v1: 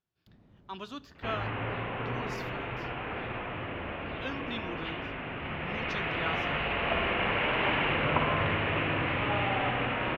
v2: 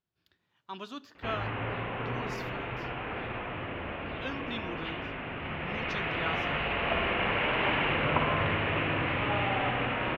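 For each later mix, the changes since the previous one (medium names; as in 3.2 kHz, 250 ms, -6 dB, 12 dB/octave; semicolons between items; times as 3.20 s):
first sound: add differentiator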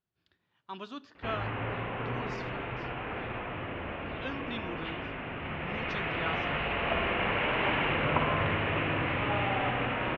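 master: add distance through air 94 m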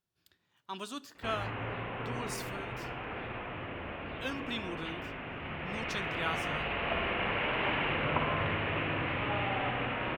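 speech: remove boxcar filter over 5 samples; second sound -3.5 dB; master: remove distance through air 94 m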